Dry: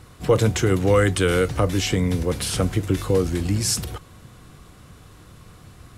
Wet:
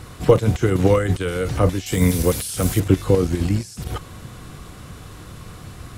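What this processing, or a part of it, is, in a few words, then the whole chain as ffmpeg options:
de-esser from a sidechain: -filter_complex "[0:a]asplit=2[s0][s1];[s1]highpass=5600,apad=whole_len=263641[s2];[s0][s2]sidechaincompress=threshold=0.00447:ratio=12:attack=0.89:release=26,asettb=1/sr,asplit=3[s3][s4][s5];[s3]atrim=end=1.864[s6];[s4]atrim=start=1.86:end=2.8,asetpts=PTS-STARTPTS,afade=t=in:d=0.004:c=qsin,afade=t=out:st=0.936:d=0.004:c=qsin,aemphasis=mode=production:type=75fm[s7];[s5]atrim=start=2.796[s8];[s6][s7]acrossfade=d=0.004:c1=hsin:c2=qsin[s9];[s9][s8]acrossfade=d=0.004:c1=qsin:c2=hsin,volume=2.51"

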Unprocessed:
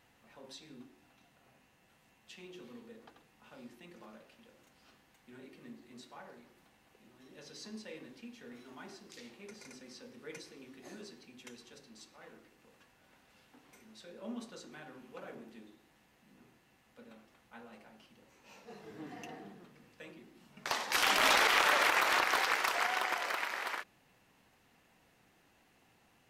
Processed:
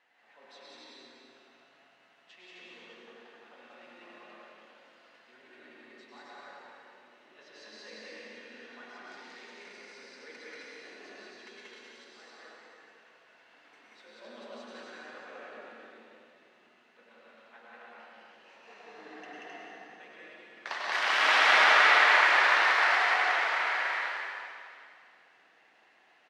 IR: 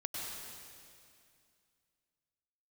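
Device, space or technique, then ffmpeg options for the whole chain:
station announcement: -filter_complex "[0:a]highpass=480,lowpass=4100,equalizer=f=1800:t=o:w=0.49:g=5,aecho=1:1:183.7|262.4:0.891|0.794[s0];[1:a]atrim=start_sample=2205[s1];[s0][s1]afir=irnorm=-1:irlink=0"

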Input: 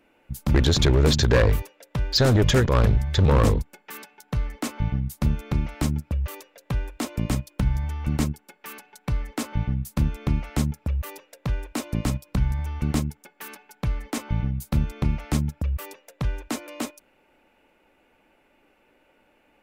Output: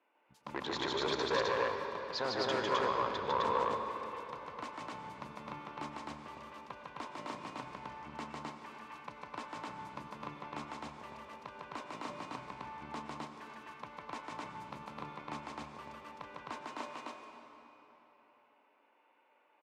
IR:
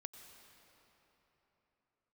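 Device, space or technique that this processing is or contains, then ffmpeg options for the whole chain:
station announcement: -filter_complex "[0:a]highpass=420,lowpass=4000,equalizer=f=1000:t=o:w=0.4:g=11.5,aecho=1:1:151.6|259.5:0.794|0.891[s0];[1:a]atrim=start_sample=2205[s1];[s0][s1]afir=irnorm=-1:irlink=0,volume=0.398"

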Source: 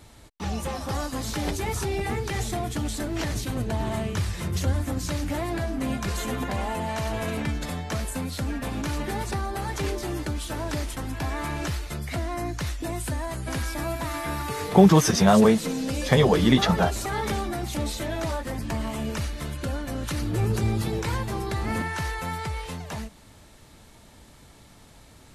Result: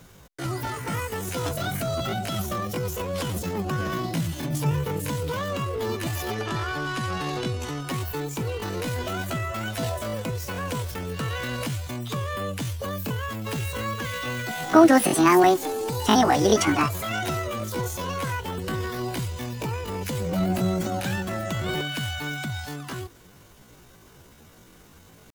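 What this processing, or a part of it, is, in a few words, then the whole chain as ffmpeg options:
chipmunk voice: -filter_complex "[0:a]asetrate=74167,aresample=44100,atempo=0.594604,asettb=1/sr,asplit=3[s0][s1][s2];[s0]atrim=end=6.354[s3];[s1]atrim=start=6.35:end=7.8,asetpts=PTS-STARTPTS,afade=t=in:d=0.004:c=qsin,afade=t=out:st=1.446:d=0.004:c=qsin,lowpass=10000[s4];[s2]atrim=start=7.796[s5];[s3][s4]acrossfade=d=0.004:c1=hsin:c2=qsin[s6];[s6][s5]acrossfade=d=0.004:c1=qsin:c2=hsin"

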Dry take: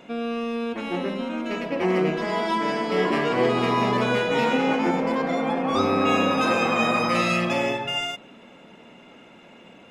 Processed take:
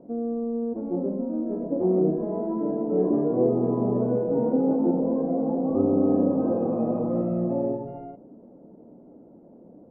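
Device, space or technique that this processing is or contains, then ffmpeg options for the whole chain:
under water: -af "lowpass=f=620:w=0.5412,lowpass=f=620:w=1.3066,equalizer=f=300:t=o:w=0.27:g=5.5"

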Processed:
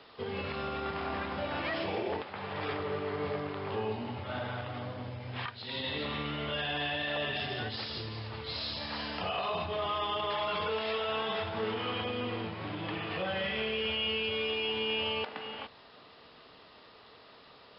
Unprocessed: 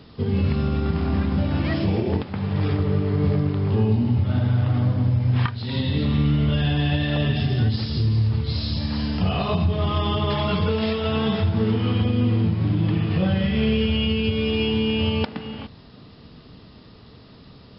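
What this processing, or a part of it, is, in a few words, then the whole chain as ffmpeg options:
DJ mixer with the lows and highs turned down: -filter_complex "[0:a]asettb=1/sr,asplit=3[s0][s1][s2];[s0]atrim=end=4.614[s3];[s1]atrim=start=4.61:end=5.84,asetpts=PTS-STARTPTS,afade=t=in:d=0.004:c=qsin,afade=t=out:st=1.226:d=0.004:c=qsin,equalizer=f=1100:t=o:w=2.3:g=-5.5[s4];[s2]atrim=start=5.836[s5];[s3][s4]acrossfade=d=0.004:c1=hsin:c2=qsin[s6];[s6][s5]acrossfade=d=0.004:c1=qsin:c2=hsin,acrossover=split=460 4200:gain=0.0708 1 0.178[s7][s8][s9];[s7][s8][s9]amix=inputs=3:normalize=0,alimiter=level_in=1.12:limit=0.0631:level=0:latency=1:release=19,volume=0.891"

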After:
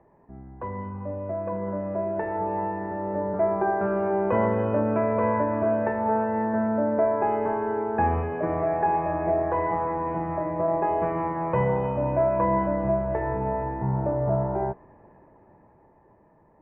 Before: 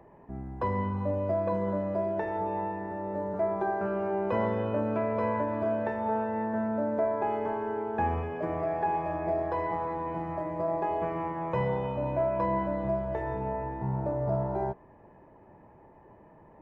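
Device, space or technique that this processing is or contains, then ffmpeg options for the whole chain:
action camera in a waterproof case: -af "lowpass=f=2300:w=0.5412,lowpass=f=2300:w=1.3066,dynaudnorm=f=450:g=9:m=3.16,volume=0.596" -ar 44100 -c:a aac -b:a 96k

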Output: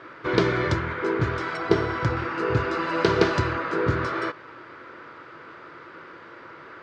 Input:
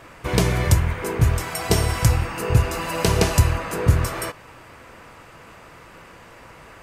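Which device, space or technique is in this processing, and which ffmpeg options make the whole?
kitchen radio: -filter_complex "[0:a]highpass=170,equalizer=f=200:t=q:w=4:g=-7,equalizer=f=350:t=q:w=4:g=8,equalizer=f=740:t=q:w=4:g=-7,equalizer=f=1400:t=q:w=4:g=8,equalizer=f=2700:t=q:w=4:g=-7,lowpass=f=4200:w=0.5412,lowpass=f=4200:w=1.3066,asettb=1/sr,asplit=3[s0][s1][s2];[s0]atrim=end=1.574[s3];[s1]atrim=start=1.57:end=2.17,asetpts=PTS-STARTPTS,afade=t=in:d=0.004:c=qsin,afade=t=out:st=0.596:d=0.004:c=qsin,highshelf=f=2800:g=-8.5[s4];[s2]atrim=start=2.166[s5];[s3][s4]acrossfade=d=0.004:c1=hsin:c2=qsin[s6];[s6][s5]acrossfade=d=0.004:c1=qsin:c2=hsin"

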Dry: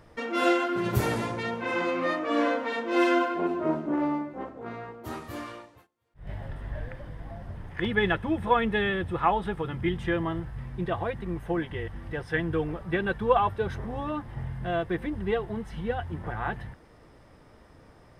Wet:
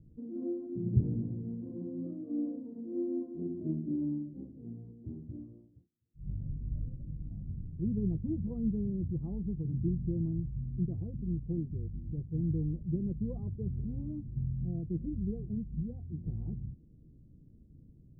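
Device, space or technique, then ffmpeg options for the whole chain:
the neighbour's flat through the wall: -filter_complex "[0:a]asettb=1/sr,asplit=3[s0][s1][s2];[s0]atrim=end=15.834[s3];[s1]atrim=start=15.83:end=16.26,asetpts=PTS-STARTPTS,afade=t=in:d=0.004:c=qsin,afade=t=out:st=0.426:d=0.004:c=qsin,lowshelf=f=210:g=-7[s4];[s2]atrim=start=16.256[s5];[s3][s4]acrossfade=d=0.004:c1=hsin:c2=qsin[s6];[s6][s5]acrossfade=d=0.004:c1=qsin:c2=hsin,lowpass=f=270:w=0.5412,lowpass=f=270:w=1.3066,equalizer=f=150:t=o:w=0.43:g=4.5,volume=0.891"

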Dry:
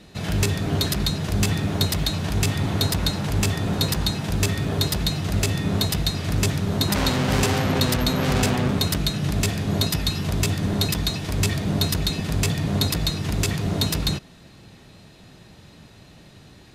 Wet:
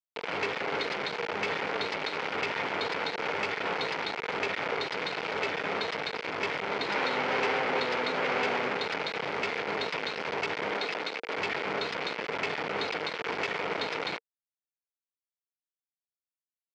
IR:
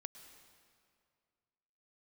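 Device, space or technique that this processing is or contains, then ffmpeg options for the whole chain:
hand-held game console: -filter_complex "[0:a]acrusher=bits=3:mix=0:aa=0.000001,highpass=420,equalizer=f=460:t=q:w=4:g=9,equalizer=f=890:t=q:w=4:g=5,equalizer=f=1400:t=q:w=4:g=5,equalizer=f=2200:t=q:w=4:g=8,equalizer=f=3800:t=q:w=4:g=-5,lowpass=f=4100:w=0.5412,lowpass=f=4100:w=1.3066,asettb=1/sr,asplit=3[s0][s1][s2];[s0]atrim=end=10.714[s3];[s1]atrim=start=10.71:end=11.38,asetpts=PTS-STARTPTS,afade=t=in:d=0.004:c=qsin,afade=t=out:st=0.666:d=0.004:c=qsin,highpass=200[s4];[s2]atrim=start=11.376[s5];[s3][s4]acrossfade=d=0.004:c1=hsin:c2=qsin[s6];[s6][s5]acrossfade=d=0.004:c1=qsin:c2=hsin,volume=0.447"

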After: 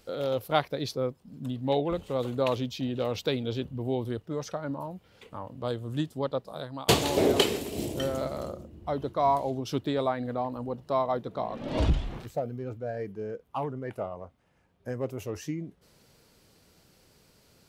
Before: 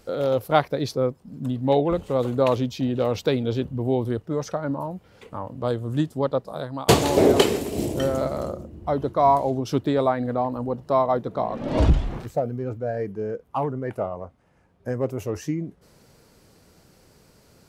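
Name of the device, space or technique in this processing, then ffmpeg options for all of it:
presence and air boost: -af "equalizer=f=3300:t=o:w=1.3:g=6,highshelf=f=11000:g=6.5,volume=0.447"

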